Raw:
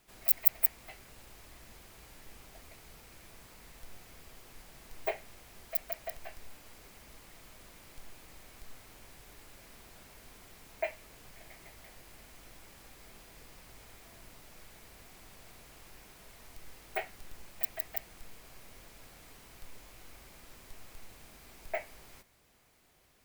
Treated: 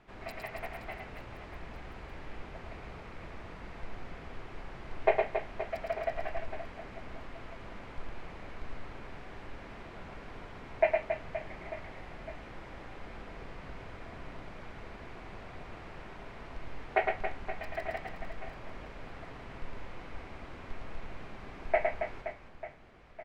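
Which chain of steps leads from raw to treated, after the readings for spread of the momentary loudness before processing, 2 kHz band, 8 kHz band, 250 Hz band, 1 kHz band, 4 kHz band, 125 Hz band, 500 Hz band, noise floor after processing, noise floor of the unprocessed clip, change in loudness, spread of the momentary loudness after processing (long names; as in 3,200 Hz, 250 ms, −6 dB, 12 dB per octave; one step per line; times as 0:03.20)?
27 LU, +8.0 dB, below −10 dB, +11.0 dB, +11.0 dB, +0.5 dB, +11.0 dB, +11.0 dB, −48 dBFS, −56 dBFS, −7.0 dB, 16 LU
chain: low-pass filter 2,000 Hz 12 dB per octave
on a send: reverse bouncing-ball delay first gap 110 ms, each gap 1.5×, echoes 5
on the sum: level +9 dB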